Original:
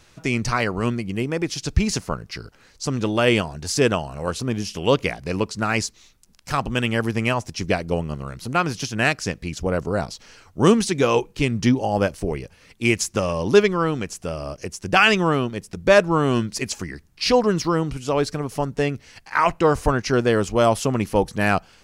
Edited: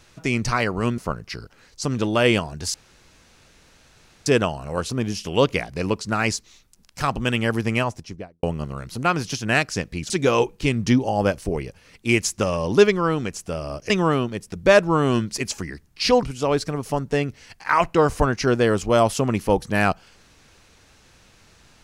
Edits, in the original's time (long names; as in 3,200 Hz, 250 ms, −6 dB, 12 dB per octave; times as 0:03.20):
0:00.98–0:02.00: remove
0:03.76: splice in room tone 1.52 s
0:07.23–0:07.93: fade out and dull
0:09.60–0:10.86: remove
0:14.66–0:15.11: remove
0:17.44–0:17.89: remove